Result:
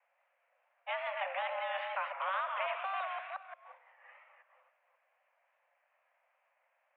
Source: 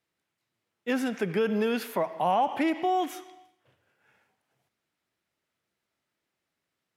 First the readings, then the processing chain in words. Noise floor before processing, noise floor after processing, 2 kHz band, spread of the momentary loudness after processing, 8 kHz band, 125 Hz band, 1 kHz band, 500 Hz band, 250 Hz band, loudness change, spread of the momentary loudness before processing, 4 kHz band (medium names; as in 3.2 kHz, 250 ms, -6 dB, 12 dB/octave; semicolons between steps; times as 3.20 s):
-84 dBFS, -78 dBFS, -1.5 dB, 12 LU, under -30 dB, under -40 dB, -7.5 dB, -11.5 dB, under -40 dB, -9.0 dB, 8 LU, -5.5 dB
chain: chunks repeated in reverse 177 ms, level -6 dB; distance through air 220 m; wow and flutter 120 cents; mistuned SSB +380 Hz 150–2200 Hz; spectrum-flattening compressor 2:1; trim -8.5 dB